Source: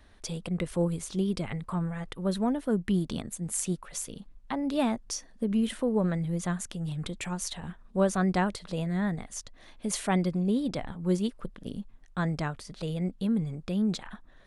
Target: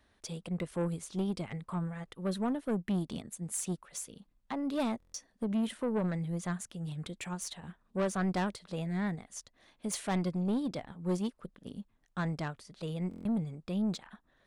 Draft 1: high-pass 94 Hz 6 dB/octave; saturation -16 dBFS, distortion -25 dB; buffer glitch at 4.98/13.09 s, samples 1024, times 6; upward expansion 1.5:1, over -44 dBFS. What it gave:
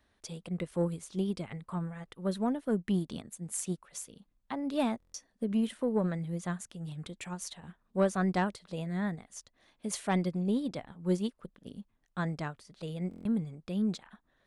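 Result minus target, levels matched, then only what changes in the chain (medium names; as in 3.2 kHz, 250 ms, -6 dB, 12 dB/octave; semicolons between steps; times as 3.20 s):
saturation: distortion -13 dB
change: saturation -25.5 dBFS, distortion -13 dB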